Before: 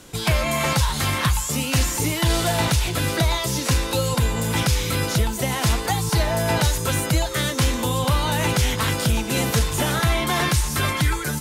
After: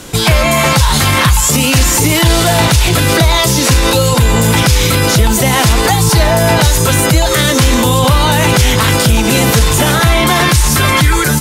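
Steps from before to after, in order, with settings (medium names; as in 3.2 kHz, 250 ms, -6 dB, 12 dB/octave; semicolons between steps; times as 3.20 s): level rider gain up to 5 dB; loudness maximiser +15.5 dB; trim -1 dB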